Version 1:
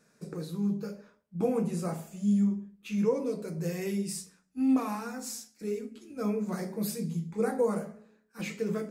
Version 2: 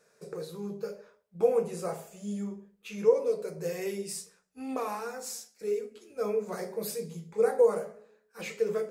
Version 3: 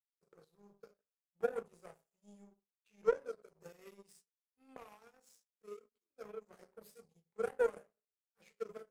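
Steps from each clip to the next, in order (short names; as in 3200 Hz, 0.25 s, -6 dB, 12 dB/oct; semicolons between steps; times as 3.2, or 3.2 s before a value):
resonant low shelf 350 Hz -7 dB, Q 3
power-law curve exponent 2; gain -5.5 dB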